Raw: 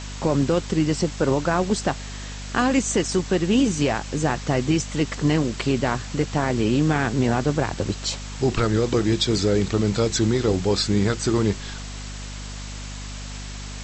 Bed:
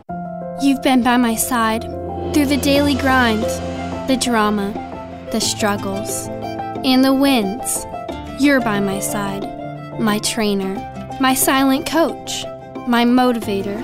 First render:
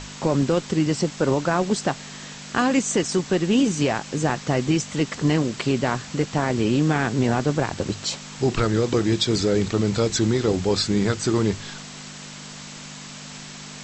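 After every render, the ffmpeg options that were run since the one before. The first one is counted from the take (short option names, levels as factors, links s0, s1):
-af "bandreject=f=50:t=h:w=6,bandreject=f=100:t=h:w=6"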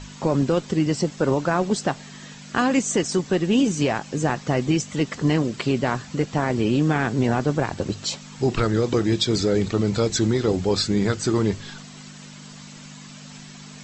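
-af "afftdn=nr=8:nf=-39"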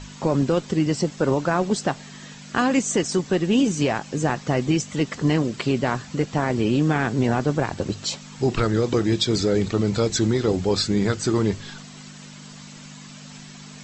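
-af anull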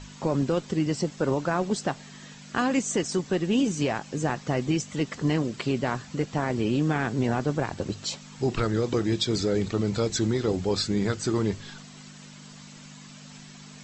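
-af "volume=0.596"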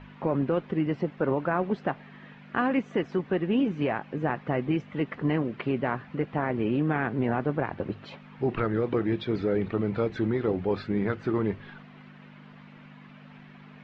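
-af "lowpass=f=2500:w=0.5412,lowpass=f=2500:w=1.3066,lowshelf=f=110:g=-7.5"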